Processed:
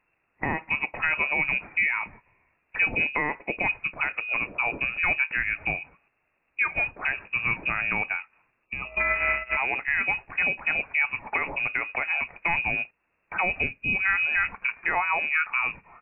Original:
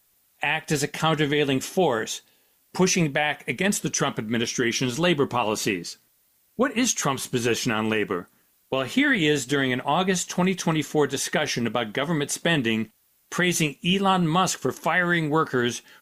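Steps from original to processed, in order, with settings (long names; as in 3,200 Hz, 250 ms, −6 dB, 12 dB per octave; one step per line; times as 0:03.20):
0:08.85–0:09.57: samples sorted by size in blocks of 64 samples
in parallel at +2 dB: downward compressor, threshold −35 dBFS, peak gain reduction 18 dB
0:08.65–0:09.00: on the sum: gain on a spectral selection 400–1,400 Hz −19 dB
voice inversion scrambler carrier 2,700 Hz
level −5 dB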